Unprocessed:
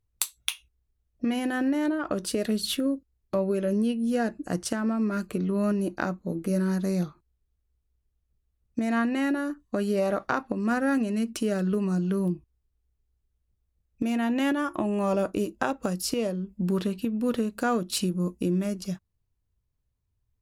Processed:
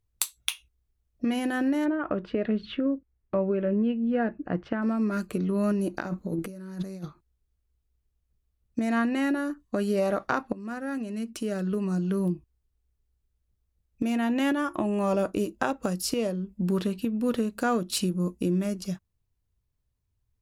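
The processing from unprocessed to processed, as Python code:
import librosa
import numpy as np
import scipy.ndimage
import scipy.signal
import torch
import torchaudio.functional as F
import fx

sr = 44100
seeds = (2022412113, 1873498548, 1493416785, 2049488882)

y = fx.lowpass(x, sr, hz=2600.0, slope=24, at=(1.84, 4.81), fade=0.02)
y = fx.over_compress(y, sr, threshold_db=-32.0, ratio=-0.5, at=(5.94, 7.05))
y = fx.edit(y, sr, fx.fade_in_from(start_s=10.53, length_s=1.75, floor_db=-12.0), tone=tone)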